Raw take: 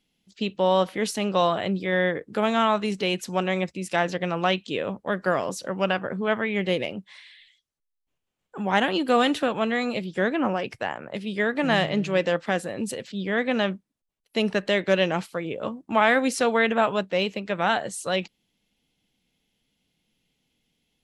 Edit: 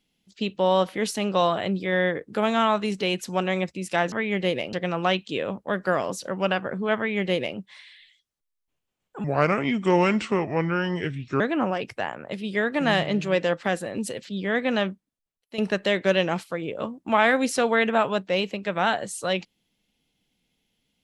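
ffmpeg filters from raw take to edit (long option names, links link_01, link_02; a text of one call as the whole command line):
ffmpeg -i in.wav -filter_complex "[0:a]asplit=6[link_01][link_02][link_03][link_04][link_05][link_06];[link_01]atrim=end=4.122[link_07];[link_02]atrim=start=6.358:end=6.972[link_08];[link_03]atrim=start=4.118:end=8.634[link_09];[link_04]atrim=start=8.63:end=10.23,asetpts=PTS-STARTPTS,asetrate=32634,aresample=44100,atrim=end_sample=95351,asetpts=PTS-STARTPTS[link_10];[link_05]atrim=start=10.226:end=14.41,asetpts=PTS-STARTPTS,afade=type=out:start_time=3.424:duration=0.76:silence=0.237137[link_11];[link_06]atrim=start=14.41,asetpts=PTS-STARTPTS,afade=type=in:duration=0.004:curve=hsin:silence=0.237137[link_12];[link_07][link_08]acrossfade=duration=0.004:curve1=hsin:curve2=hsin[link_13];[link_13][link_09]acrossfade=duration=0.004:curve1=hsin:curve2=hsin[link_14];[link_14][link_10]acrossfade=duration=0.004:curve1=hsin:curve2=hsin[link_15];[link_11][link_12]concat=n=2:v=0:a=1[link_16];[link_15][link_16]acrossfade=duration=0.004:curve1=hsin:curve2=hsin" out.wav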